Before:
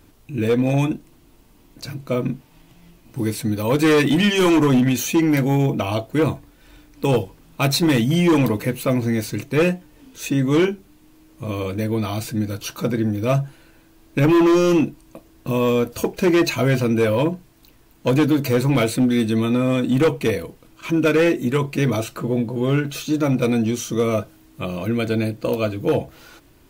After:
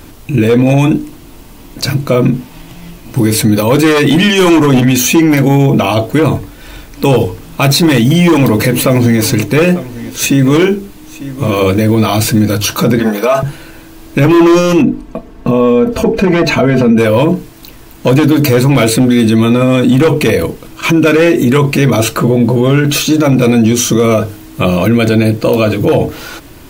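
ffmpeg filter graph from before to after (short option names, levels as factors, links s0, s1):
-filter_complex "[0:a]asettb=1/sr,asplit=3[s0][s1][s2];[s0]atrim=end=7.684[s3];[s1]atrim=start=7.68:end=12.43,asetpts=PTS-STARTPTS,afade=t=in:d=0.004:c=qsin,afade=t=out:st=4.746:d=0.004:c=qsin,acrusher=bits=9:mode=log:mix=0:aa=0.000001,aecho=1:1:895:0.075,atrim=end_sample=209475[s4];[s2]atrim=start=12.426[s5];[s3][s4]acrossfade=d=0.004:c1=hsin:c2=qsin[s6];[s6][s5]acrossfade=d=0.004:c1=qsin:c2=hsin,asettb=1/sr,asplit=3[s7][s8][s9];[s7]atrim=end=12.994[s10];[s8]atrim=start=12.99:end=13.43,asetpts=PTS-STARTPTS,afade=t=in:d=0.004:c=qsin,afade=t=out:st=0.436:d=0.004:c=qsin,highpass=440,equalizer=f=1000:w=0.91:g=7,aecho=1:1:4.7:0.67,atrim=end_sample=19404[s11];[s9]atrim=start=13.426[s12];[s10][s11]acrossfade=d=0.004:c1=hsin:c2=qsin[s13];[s13][s12]acrossfade=d=0.004:c1=qsin:c2=hsin,asettb=1/sr,asplit=3[s14][s15][s16];[s14]atrim=end=14.824[s17];[s15]atrim=start=14.82:end=16.98,asetpts=PTS-STARTPTS,afade=t=in:d=0.004:c=qsin,afade=t=out:st=2.156:d=0.004:c=qsin,lowpass=f=1200:p=1,aecho=1:1:4.5:0.61,atrim=end_sample=95256[s18];[s16]atrim=start=16.976[s19];[s17][s18]acrossfade=d=0.004:c1=hsin:c2=qsin[s20];[s20][s19]acrossfade=d=0.004:c1=qsin:c2=hsin,bandreject=f=50:t=h:w=6,bandreject=f=100:t=h:w=6,bandreject=f=150:t=h:w=6,bandreject=f=200:t=h:w=6,bandreject=f=250:t=h:w=6,bandreject=f=300:t=h:w=6,bandreject=f=350:t=h:w=6,bandreject=f=400:t=h:w=6,bandreject=f=450:t=h:w=6,alimiter=level_in=9.44:limit=0.891:release=50:level=0:latency=1,volume=0.891"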